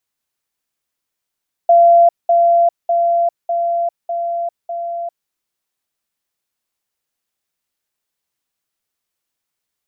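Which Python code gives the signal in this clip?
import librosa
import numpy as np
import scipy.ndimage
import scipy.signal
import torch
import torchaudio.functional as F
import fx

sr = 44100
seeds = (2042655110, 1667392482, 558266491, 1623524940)

y = fx.level_ladder(sr, hz=685.0, from_db=-5.5, step_db=-3.0, steps=6, dwell_s=0.4, gap_s=0.2)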